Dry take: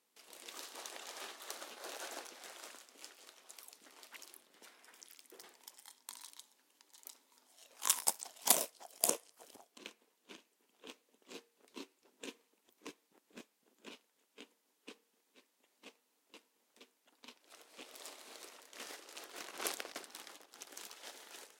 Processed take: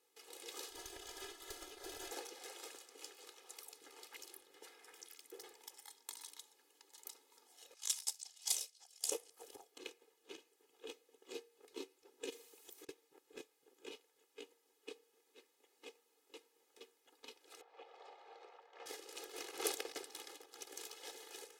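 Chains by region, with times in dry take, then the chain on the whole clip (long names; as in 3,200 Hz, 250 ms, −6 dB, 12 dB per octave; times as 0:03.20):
0:00.70–0:02.11: tube saturation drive 39 dB, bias 0.75 + comb filter 3 ms, depth 67%
0:07.74–0:09.12: tube saturation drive 17 dB, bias 0.3 + resonant band-pass 5,400 Hz, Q 1.1
0:12.30–0:12.89: high-shelf EQ 3,400 Hz +10.5 dB + compressor whose output falls as the input rises −57 dBFS, ratio −0.5
0:17.61–0:18.86: high-pass with resonance 710 Hz, resonance Q 2.1 + head-to-tape spacing loss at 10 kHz 38 dB
whole clip: parametric band 460 Hz +5 dB 0.55 octaves; comb filter 2.4 ms, depth 93%; dynamic equaliser 1,300 Hz, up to −4 dB, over −58 dBFS, Q 0.94; level −2 dB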